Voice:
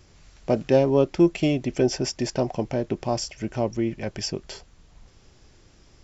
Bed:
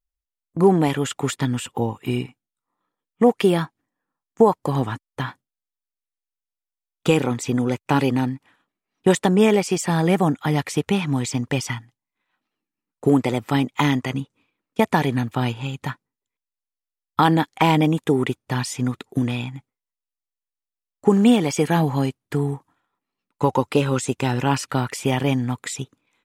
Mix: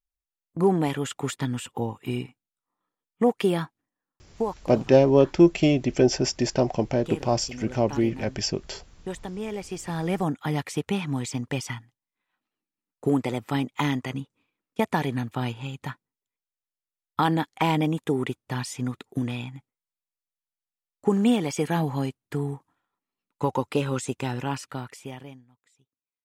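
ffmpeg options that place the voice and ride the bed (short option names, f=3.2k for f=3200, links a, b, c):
-filter_complex "[0:a]adelay=4200,volume=2dB[a];[1:a]volume=6dB,afade=t=out:st=3.73:d=0.97:silence=0.251189,afade=t=in:st=9.45:d=0.95:silence=0.266073,afade=t=out:st=24.08:d=1.37:silence=0.0316228[b];[a][b]amix=inputs=2:normalize=0"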